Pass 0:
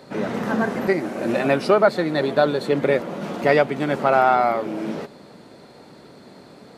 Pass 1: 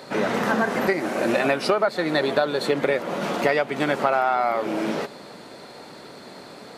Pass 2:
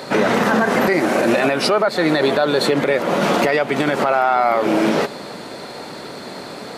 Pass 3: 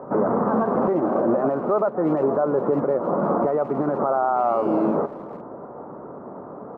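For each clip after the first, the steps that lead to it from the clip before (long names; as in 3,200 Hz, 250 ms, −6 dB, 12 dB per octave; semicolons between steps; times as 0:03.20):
low-shelf EQ 390 Hz −10 dB; downward compressor 6 to 1, threshold −25 dBFS, peak gain reduction 12 dB; level +7.5 dB
boost into a limiter +15.5 dB; level −6 dB
elliptic low-pass filter 1,200 Hz, stop band 80 dB; far-end echo of a speakerphone 350 ms, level −19 dB; level −3.5 dB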